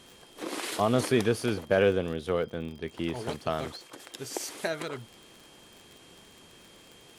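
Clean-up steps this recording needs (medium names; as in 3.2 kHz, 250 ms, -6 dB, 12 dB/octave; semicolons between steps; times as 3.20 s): de-click; band-stop 3.2 kHz, Q 30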